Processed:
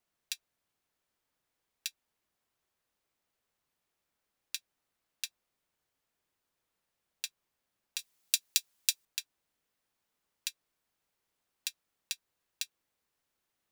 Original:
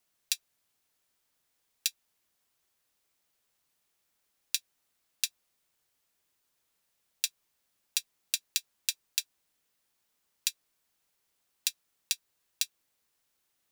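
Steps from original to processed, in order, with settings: treble shelf 2.9 kHz -9 dB, from 7.99 s +4 dB, from 9.05 s -7.5 dB; trim -1 dB

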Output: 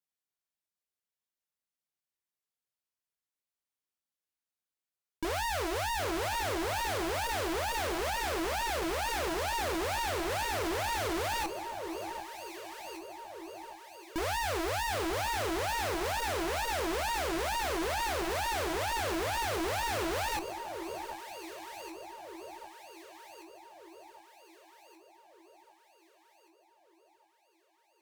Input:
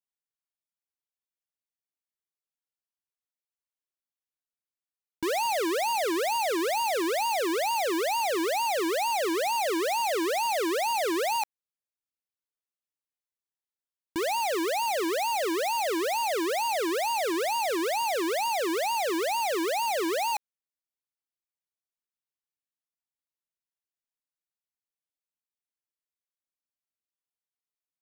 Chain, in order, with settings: chorus 0.23 Hz, delay 18 ms, depth 6.7 ms; on a send: echo whose repeats swap between lows and highs 764 ms, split 1.1 kHz, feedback 68%, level -12.5 dB; on the sum: Chebyshev shaper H 2 -8 dB, 5 -10 dB, 6 -12 dB, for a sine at -22.5 dBFS; trim -5 dB

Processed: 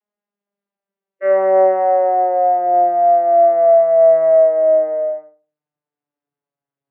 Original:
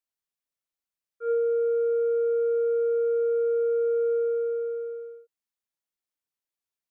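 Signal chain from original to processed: vocoder on a note that slides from G#3, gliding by -7 st; high-pass 350 Hz 6 dB/octave; tilt shelf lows +6.5 dB, about 840 Hz; in parallel at +1.5 dB: peak limiter -25.5 dBFS, peak gain reduction 7 dB; on the sum: formant shift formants +5 st; distance through air 290 m; on a send: filtered feedback delay 79 ms, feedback 27%, low-pass 990 Hz, level -6.5 dB; on the sum: trim +9 dB

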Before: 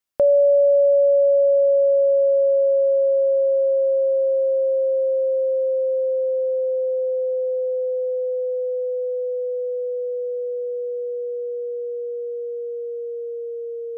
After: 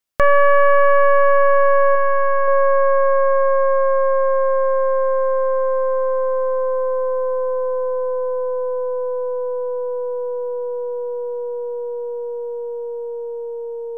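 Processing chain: tracing distortion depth 0.48 ms; 1.95–2.48 s: peaking EQ 440 Hz -5.5 dB 1.4 oct; trim +2 dB

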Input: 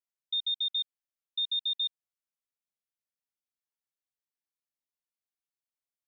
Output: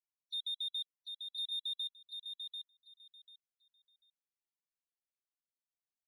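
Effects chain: hard clipper -35.5 dBFS, distortion -10 dB; touch-sensitive flanger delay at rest 6 ms, full sweep at -39 dBFS; loudest bins only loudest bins 32; on a send: feedback delay 742 ms, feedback 19%, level -6 dB; on the sum: resampled via 22.05 kHz

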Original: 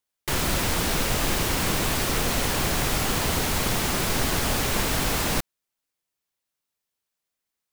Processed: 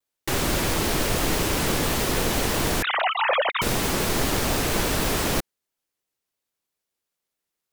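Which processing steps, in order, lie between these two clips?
2.82–3.62 s: formants replaced by sine waves; peaking EQ 390 Hz +4.5 dB 1.2 oct; vibrato with a chosen wave saw down 6 Hz, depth 250 cents

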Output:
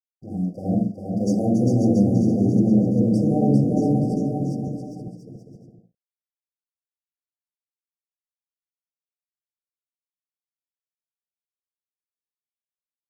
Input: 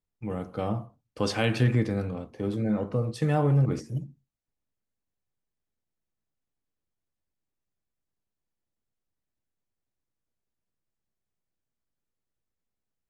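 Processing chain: chunks repeated in reverse 520 ms, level -6 dB; in parallel at -6.5 dB: hard clipper -28.5 dBFS, distortion -5 dB; on the sum: touch-sensitive flanger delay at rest 11.3 ms, full sweep at -22 dBFS; on a send at -3.5 dB: dynamic bell 240 Hz, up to +6 dB, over -36 dBFS, Q 1.4 + reverberation, pre-delay 46 ms; on the sum: crossover distortion -51 dBFS; brick-wall FIR band-stop 780–4600 Hz; bass shelf 160 Hz -4 dB; bouncing-ball echo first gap 400 ms, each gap 0.7×, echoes 5

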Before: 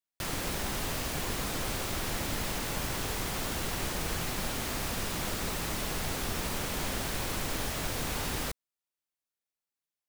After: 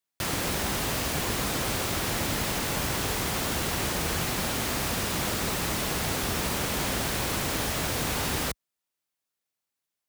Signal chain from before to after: high-pass 52 Hz; trim +5.5 dB

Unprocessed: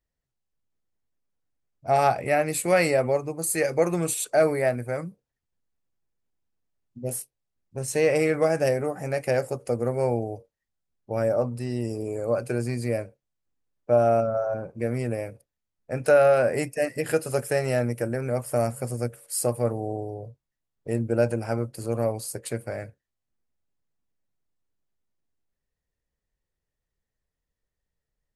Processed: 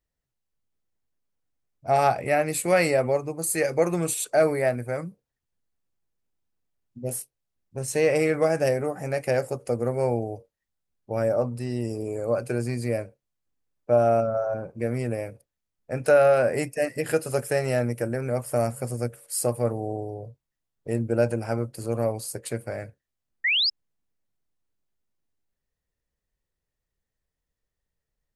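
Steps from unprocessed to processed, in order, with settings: painted sound rise, 23.44–23.70 s, 1.8–5.3 kHz -22 dBFS

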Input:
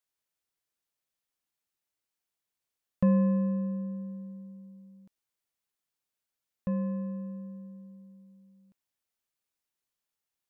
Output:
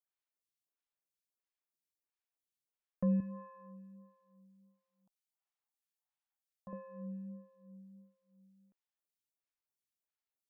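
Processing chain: 3.20–6.73 s: resonant low shelf 570 Hz -10 dB, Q 3; lamp-driven phase shifter 1.5 Hz; trim -6.5 dB

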